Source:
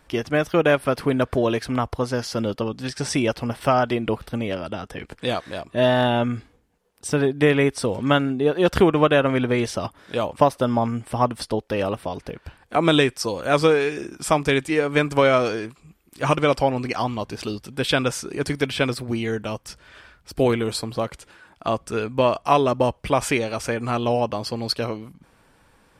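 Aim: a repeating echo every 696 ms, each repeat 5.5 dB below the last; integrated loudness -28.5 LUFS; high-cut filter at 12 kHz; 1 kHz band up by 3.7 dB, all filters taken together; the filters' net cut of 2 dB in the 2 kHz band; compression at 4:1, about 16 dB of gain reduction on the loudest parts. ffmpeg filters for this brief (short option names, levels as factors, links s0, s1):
-af "lowpass=12000,equalizer=f=1000:t=o:g=6,equalizer=f=2000:t=o:g=-5,acompressor=threshold=0.0316:ratio=4,aecho=1:1:696|1392|2088|2784|3480|4176|4872:0.531|0.281|0.149|0.079|0.0419|0.0222|0.0118,volume=1.5"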